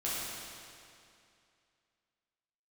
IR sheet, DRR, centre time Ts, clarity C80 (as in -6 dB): -8.5 dB, 0.161 s, -1.0 dB